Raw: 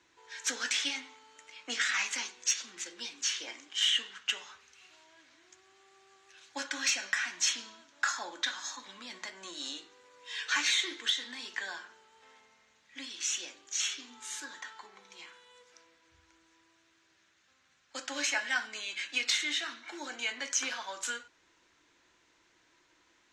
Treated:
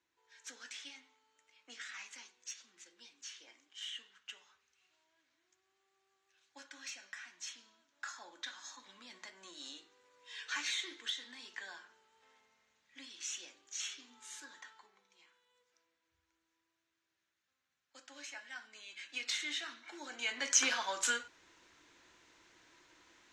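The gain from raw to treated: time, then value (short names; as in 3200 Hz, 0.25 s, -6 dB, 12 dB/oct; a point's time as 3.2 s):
7.6 s -17 dB
8.88 s -9 dB
14.63 s -9 dB
15.1 s -17 dB
18.51 s -17 dB
19.44 s -6.5 dB
20.07 s -6.5 dB
20.57 s +3 dB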